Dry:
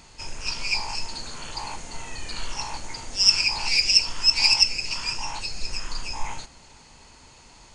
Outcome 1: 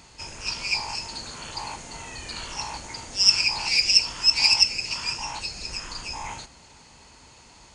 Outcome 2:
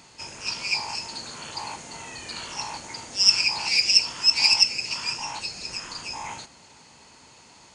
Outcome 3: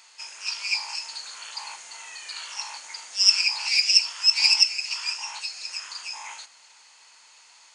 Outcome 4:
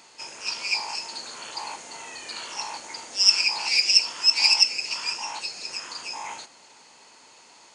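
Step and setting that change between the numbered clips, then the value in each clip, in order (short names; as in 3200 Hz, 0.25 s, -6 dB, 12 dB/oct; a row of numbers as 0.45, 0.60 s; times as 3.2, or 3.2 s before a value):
HPF, cutoff: 43, 120, 1200, 350 Hz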